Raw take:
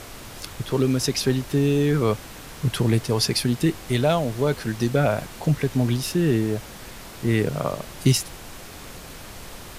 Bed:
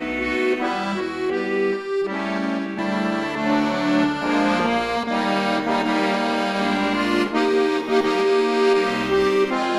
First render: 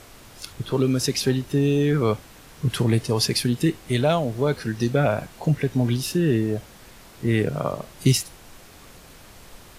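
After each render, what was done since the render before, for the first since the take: noise print and reduce 7 dB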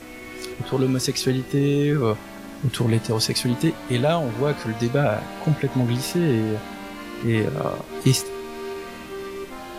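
add bed -15 dB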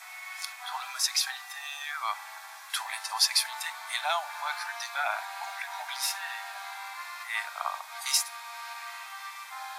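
steep high-pass 750 Hz 72 dB/oct; notch 2900 Hz, Q 6.4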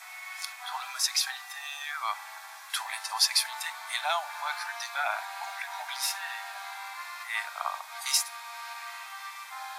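nothing audible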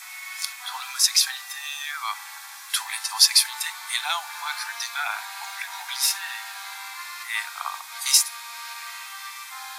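steep high-pass 790 Hz 36 dB/oct; high shelf 2500 Hz +10 dB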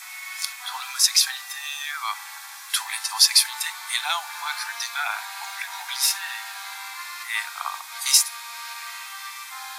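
gain +1 dB; limiter -3 dBFS, peak gain reduction 1.5 dB

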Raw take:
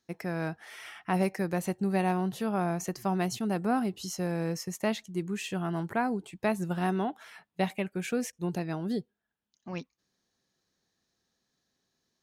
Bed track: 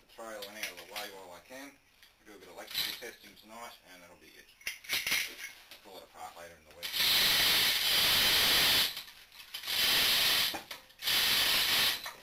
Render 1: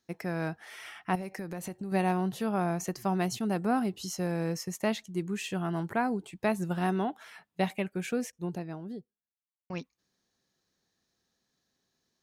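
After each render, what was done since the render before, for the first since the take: 1.15–1.92 compressor 16:1, threshold -33 dBFS; 7.82–9.7 studio fade out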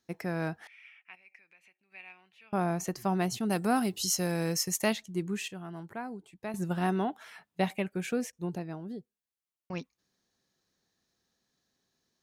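0.67–2.53 band-pass 2400 Hz, Q 9.2; 3.5–4.93 high shelf 2900 Hz +12 dB; 5.48–6.54 gain -10 dB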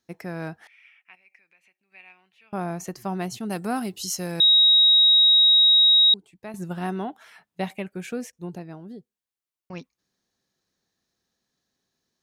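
4.4–6.14 bleep 3800 Hz -12.5 dBFS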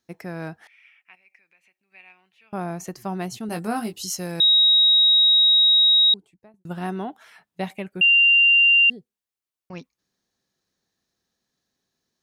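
3.47–3.93 doubler 18 ms -6 dB; 6.1–6.65 studio fade out; 8.01–8.9 bleep 2780 Hz -12 dBFS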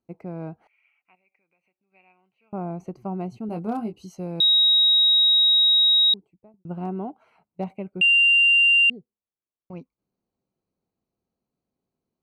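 Wiener smoothing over 25 samples; bell 1900 Hz +4.5 dB 0.65 oct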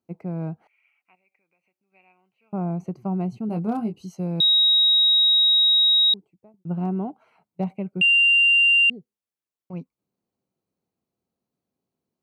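HPF 78 Hz; dynamic EQ 160 Hz, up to +7 dB, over -45 dBFS, Q 1.5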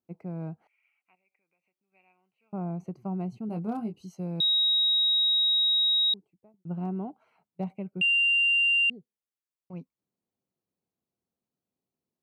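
gain -6.5 dB

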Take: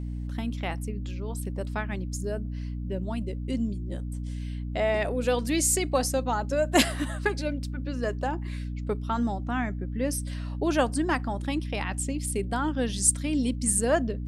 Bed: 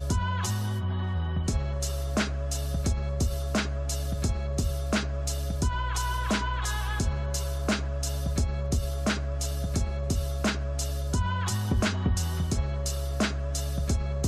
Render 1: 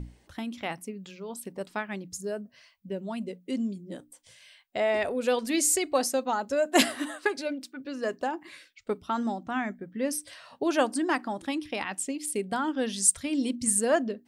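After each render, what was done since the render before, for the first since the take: notches 60/120/180/240/300 Hz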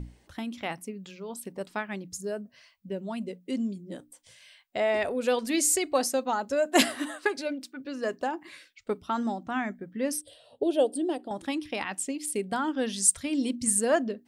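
10.21–11.31 EQ curve 130 Hz 0 dB, 190 Hz -11 dB, 470 Hz +7 dB, 740 Hz -4 dB, 1100 Hz -20 dB, 2200 Hz -19 dB, 3300 Hz 0 dB, 6200 Hz -19 dB, 8900 Hz -1 dB, 14000 Hz -10 dB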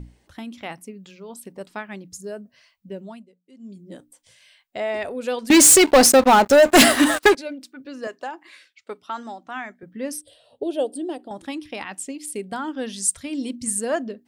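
3.02–3.83 dip -19 dB, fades 0.24 s; 5.5–7.35 sample leveller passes 5; 8.07–9.83 weighting filter A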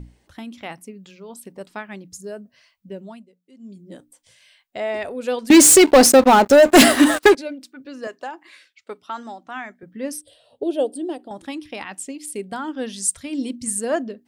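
dynamic EQ 330 Hz, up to +4 dB, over -27 dBFS, Q 0.82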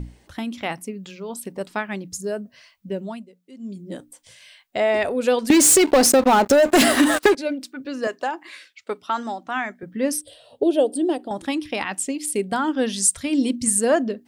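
in parallel at +0.5 dB: limiter -11.5 dBFS, peak gain reduction 9 dB; on the sum: compressor 4:1, threshold -14 dBFS, peak gain reduction 9.5 dB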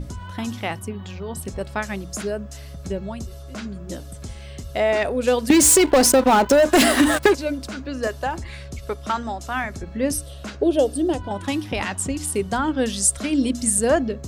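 add bed -7.5 dB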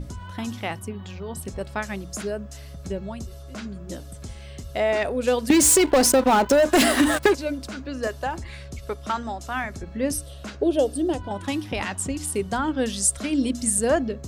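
gain -2.5 dB

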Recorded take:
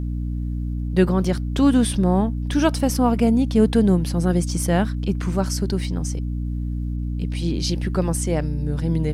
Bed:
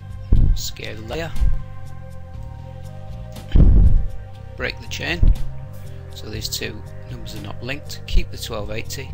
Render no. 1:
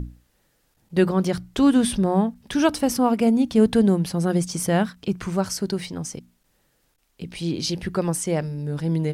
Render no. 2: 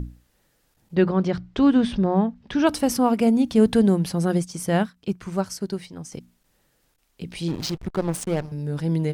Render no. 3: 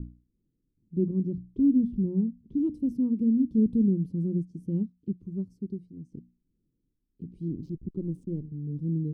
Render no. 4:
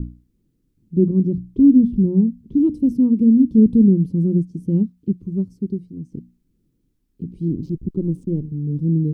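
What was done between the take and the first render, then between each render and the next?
notches 60/120/180/240/300 Hz
0.95–2.67 air absorption 160 m; 4.35–6.12 upward expander, over -41 dBFS; 7.48–8.52 backlash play -23 dBFS
inverse Chebyshev low-pass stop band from 630 Hz, stop band 40 dB; low shelf 210 Hz -8.5 dB
gain +10.5 dB

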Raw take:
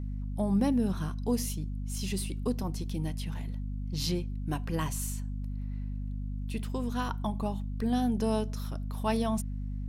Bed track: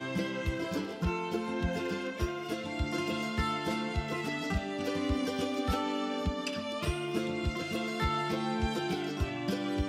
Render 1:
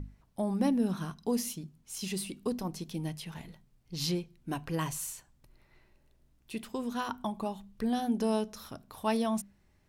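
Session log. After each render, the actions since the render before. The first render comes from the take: notches 50/100/150/200/250 Hz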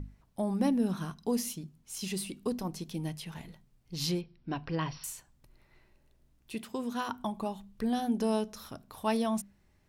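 4.21–5.04 brick-wall FIR low-pass 5800 Hz; 6.54–7.19 HPF 72 Hz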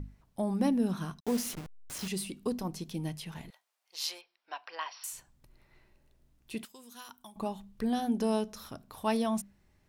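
1.2–2.08 level-crossing sampler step -37 dBFS; 3.5–5.13 HPF 680 Hz 24 dB/oct; 6.65–7.36 pre-emphasis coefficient 0.9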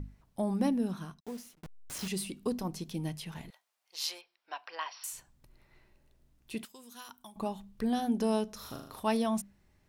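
0.53–1.63 fade out; 8.55–9 flutter echo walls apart 6.7 m, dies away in 0.64 s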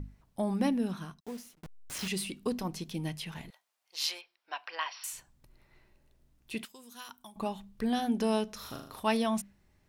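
dynamic EQ 2400 Hz, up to +6 dB, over -53 dBFS, Q 0.76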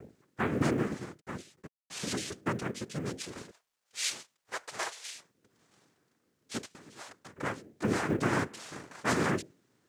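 noise vocoder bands 3; companded quantiser 8-bit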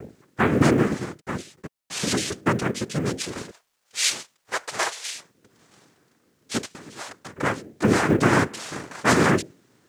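gain +10.5 dB

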